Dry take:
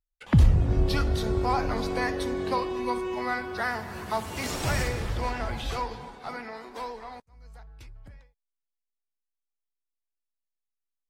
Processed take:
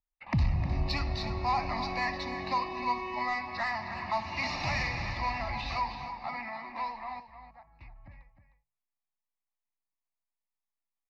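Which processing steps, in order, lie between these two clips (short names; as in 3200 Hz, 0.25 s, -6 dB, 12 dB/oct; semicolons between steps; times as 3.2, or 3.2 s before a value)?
inverse Chebyshev low-pass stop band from 8100 Hz, stop band 40 dB; de-hum 52.75 Hz, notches 3; low-pass opened by the level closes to 1400 Hz, open at -25.5 dBFS; tilt +2 dB/oct; in parallel at -3 dB: compressor, threshold -37 dBFS, peak gain reduction 15.5 dB; on the sum: soft clip -18 dBFS, distortion -20 dB; fixed phaser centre 2200 Hz, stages 8; on a send: echo 0.308 s -11 dB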